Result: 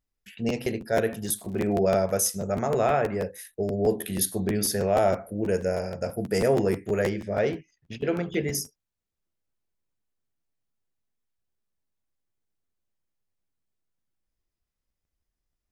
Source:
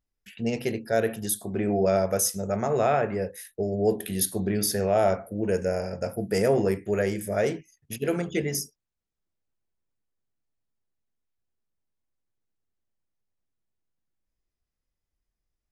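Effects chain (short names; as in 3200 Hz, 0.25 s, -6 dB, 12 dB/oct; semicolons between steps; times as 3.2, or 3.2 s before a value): 1.24–1.75 crackle 190/s -> 81/s -41 dBFS; 7.09–8.44 LPF 4800 Hz 24 dB/oct; crackling interface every 0.16 s, samples 512, repeat, from 0.32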